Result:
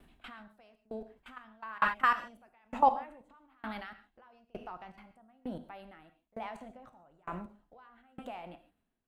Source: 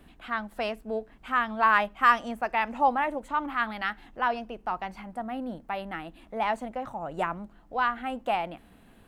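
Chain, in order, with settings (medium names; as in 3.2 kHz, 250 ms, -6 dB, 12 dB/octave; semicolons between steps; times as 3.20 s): level held to a coarse grid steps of 22 dB; gated-style reverb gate 170 ms flat, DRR 6.5 dB; sawtooth tremolo in dB decaying 1.1 Hz, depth 32 dB; trim +6.5 dB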